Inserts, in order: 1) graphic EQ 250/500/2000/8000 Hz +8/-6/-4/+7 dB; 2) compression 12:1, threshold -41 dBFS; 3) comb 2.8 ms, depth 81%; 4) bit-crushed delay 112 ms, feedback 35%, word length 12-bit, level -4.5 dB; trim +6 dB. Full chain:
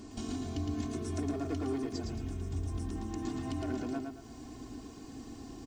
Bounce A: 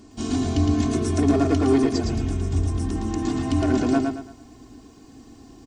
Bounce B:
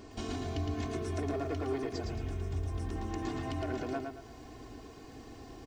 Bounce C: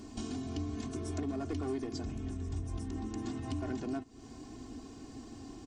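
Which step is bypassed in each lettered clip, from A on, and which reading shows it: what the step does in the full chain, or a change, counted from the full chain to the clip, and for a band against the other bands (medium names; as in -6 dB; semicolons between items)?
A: 2, mean gain reduction 9.5 dB; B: 1, momentary loudness spread change +3 LU; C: 4, loudness change -1.5 LU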